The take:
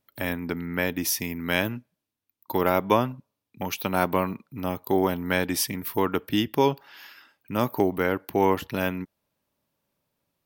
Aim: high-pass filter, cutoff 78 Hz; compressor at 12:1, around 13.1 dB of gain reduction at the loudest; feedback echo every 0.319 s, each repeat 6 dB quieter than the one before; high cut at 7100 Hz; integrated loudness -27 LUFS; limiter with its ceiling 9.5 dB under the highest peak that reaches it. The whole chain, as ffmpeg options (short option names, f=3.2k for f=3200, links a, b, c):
-af "highpass=78,lowpass=7.1k,acompressor=threshold=-29dB:ratio=12,alimiter=limit=-23.5dB:level=0:latency=1,aecho=1:1:319|638|957|1276|1595|1914:0.501|0.251|0.125|0.0626|0.0313|0.0157,volume=9.5dB"